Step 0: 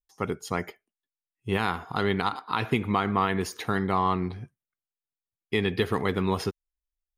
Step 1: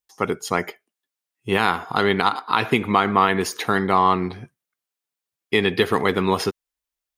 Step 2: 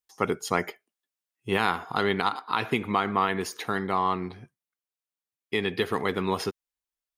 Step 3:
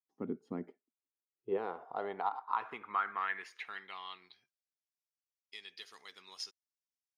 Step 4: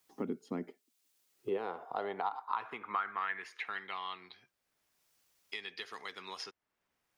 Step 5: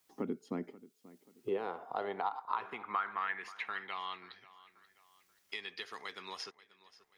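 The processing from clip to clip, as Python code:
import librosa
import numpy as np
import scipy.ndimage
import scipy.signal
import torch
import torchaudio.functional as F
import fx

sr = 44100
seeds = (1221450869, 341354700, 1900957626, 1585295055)

y1 = fx.highpass(x, sr, hz=270.0, slope=6)
y1 = F.gain(torch.from_numpy(y1), 8.5).numpy()
y2 = fx.rider(y1, sr, range_db=4, speed_s=2.0)
y2 = F.gain(torch.from_numpy(y2), -6.5).numpy()
y3 = fx.filter_sweep_bandpass(y2, sr, from_hz=250.0, to_hz=5500.0, start_s=0.78, end_s=4.76, q=3.2)
y3 = F.gain(torch.from_numpy(y3), -3.0).numpy()
y4 = fx.band_squash(y3, sr, depth_pct=70)
y4 = F.gain(torch.from_numpy(y4), 1.0).numpy()
y5 = fx.echo_feedback(y4, sr, ms=534, feedback_pct=39, wet_db=-19.0)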